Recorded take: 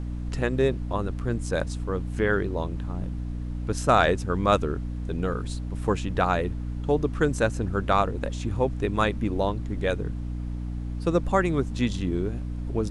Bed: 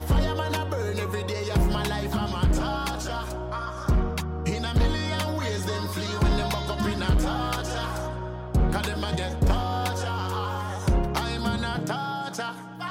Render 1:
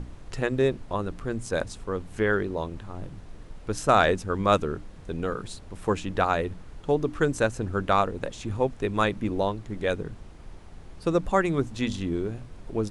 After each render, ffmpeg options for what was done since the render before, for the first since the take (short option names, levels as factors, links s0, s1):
-af "bandreject=f=60:t=h:w=6,bandreject=f=120:t=h:w=6,bandreject=f=180:t=h:w=6,bandreject=f=240:t=h:w=6,bandreject=f=300:t=h:w=6"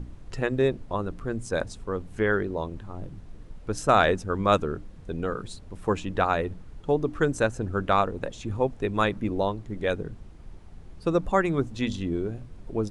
-af "afftdn=nr=6:nf=-45"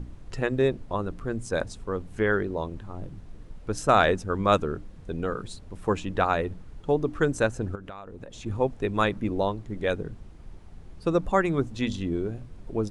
-filter_complex "[0:a]asettb=1/sr,asplit=3[s0][s1][s2];[s0]atrim=end=7.754[s3];[s1]atrim=start=7.75:end=8.46,asetpts=PTS-STARTPTS,afade=t=in:d=0.004:c=qsin,afade=t=out:st=0.706:d=0.004:c=qsin,acompressor=threshold=0.0141:ratio=8:attack=3.2:release=140:knee=1:detection=peak[s4];[s2]atrim=start=8.456[s5];[s3][s4]acrossfade=d=0.004:c1=hsin:c2=qsin[s6];[s6][s5]acrossfade=d=0.004:c1=qsin:c2=hsin"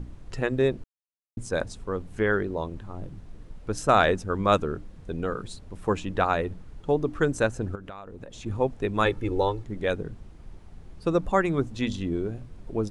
-filter_complex "[0:a]asettb=1/sr,asplit=3[s0][s1][s2];[s0]atrim=end=9.054[s3];[s1]atrim=start=9.05:end=9.64,asetpts=PTS-STARTPTS,afade=t=in:d=0.004:c=qsin,afade=t=out:st=0.586:d=0.004:c=qsin,aecho=1:1:2.3:0.77,atrim=end_sample=26019[s4];[s2]atrim=start=9.636[s5];[s3][s4]acrossfade=d=0.004:c1=hsin:c2=qsin[s6];[s6][s5]acrossfade=d=0.004:c1=qsin:c2=hsin,asplit=3[s7][s8][s9];[s7]atrim=end=0.84,asetpts=PTS-STARTPTS,afade=t=out:st=0.836:d=0.004:c=hsin[s10];[s8]atrim=start=0.84:end=1.37,asetpts=PTS-STARTPTS,volume=0[s11];[s9]atrim=start=1.37,asetpts=PTS-STARTPTS,afade=t=in:d=0.004:c=hsin[s12];[s10][s11][s12]concat=n=3:v=0:a=1"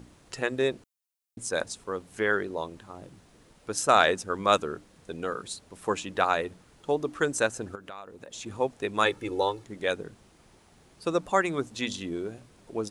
-af "highpass=f=420:p=1,highshelf=f=4500:g=10"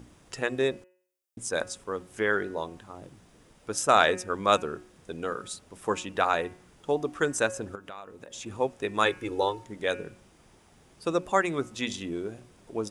-af "bandreject=f=4200:w=11,bandreject=f=182.4:t=h:w=4,bandreject=f=364.8:t=h:w=4,bandreject=f=547.2:t=h:w=4,bandreject=f=729.6:t=h:w=4,bandreject=f=912:t=h:w=4,bandreject=f=1094.4:t=h:w=4,bandreject=f=1276.8:t=h:w=4,bandreject=f=1459.2:t=h:w=4,bandreject=f=1641.6:t=h:w=4,bandreject=f=1824:t=h:w=4,bandreject=f=2006.4:t=h:w=4,bandreject=f=2188.8:t=h:w=4,bandreject=f=2371.2:t=h:w=4,bandreject=f=2553.6:t=h:w=4,bandreject=f=2736:t=h:w=4,bandreject=f=2918.4:t=h:w=4"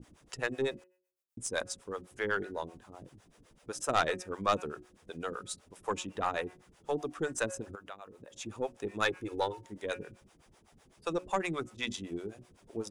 -filter_complex "[0:a]acrossover=split=450[s0][s1];[s0]aeval=exprs='val(0)*(1-1/2+1/2*cos(2*PI*7.9*n/s))':c=same[s2];[s1]aeval=exprs='val(0)*(1-1/2-1/2*cos(2*PI*7.9*n/s))':c=same[s3];[s2][s3]amix=inputs=2:normalize=0,aeval=exprs='(tanh(7.94*val(0)+0.25)-tanh(0.25))/7.94':c=same"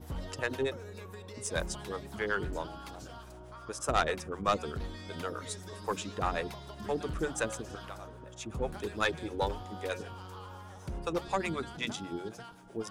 -filter_complex "[1:a]volume=0.141[s0];[0:a][s0]amix=inputs=2:normalize=0"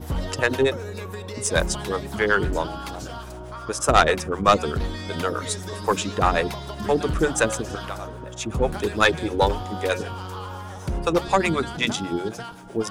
-af "volume=3.98"